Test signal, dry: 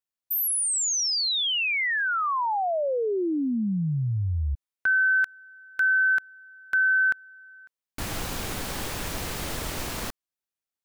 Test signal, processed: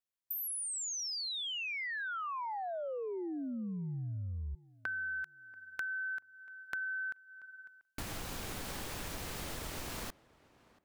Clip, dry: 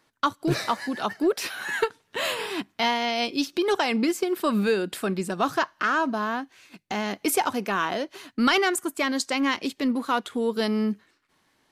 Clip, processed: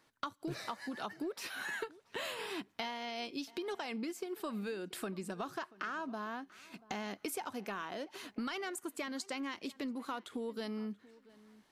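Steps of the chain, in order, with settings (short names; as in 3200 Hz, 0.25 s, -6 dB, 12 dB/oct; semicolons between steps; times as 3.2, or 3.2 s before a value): compressor 6:1, threshold -34 dBFS; on a send: tape echo 0.685 s, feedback 25%, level -20 dB, low-pass 1900 Hz; on the sum: gain -4 dB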